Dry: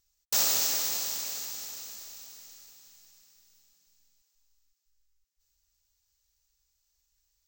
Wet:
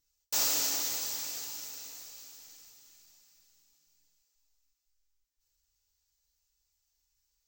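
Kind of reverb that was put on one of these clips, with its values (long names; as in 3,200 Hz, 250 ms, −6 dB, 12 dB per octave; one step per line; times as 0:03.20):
feedback delay network reverb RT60 0.37 s, low-frequency decay 1×, high-frequency decay 0.95×, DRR −0.5 dB
level −6 dB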